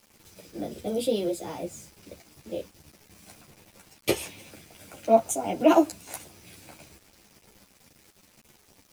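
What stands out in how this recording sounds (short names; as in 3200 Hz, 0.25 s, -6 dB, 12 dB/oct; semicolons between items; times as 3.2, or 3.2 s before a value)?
a quantiser's noise floor 8-bit, dither none; a shimmering, thickened sound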